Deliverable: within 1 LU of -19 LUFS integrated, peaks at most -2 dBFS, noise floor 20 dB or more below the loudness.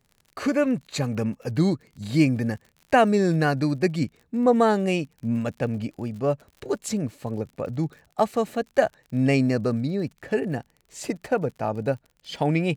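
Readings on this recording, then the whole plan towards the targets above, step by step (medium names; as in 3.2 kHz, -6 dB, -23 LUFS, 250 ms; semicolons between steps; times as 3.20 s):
tick rate 48 per s; loudness -25.0 LUFS; peak level -5.5 dBFS; loudness target -19.0 LUFS
-> de-click; trim +6 dB; peak limiter -2 dBFS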